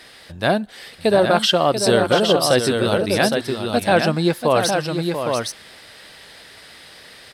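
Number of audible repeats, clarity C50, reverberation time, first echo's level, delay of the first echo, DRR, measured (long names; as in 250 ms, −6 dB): 2, no reverb audible, no reverb audible, −8.5 dB, 688 ms, no reverb audible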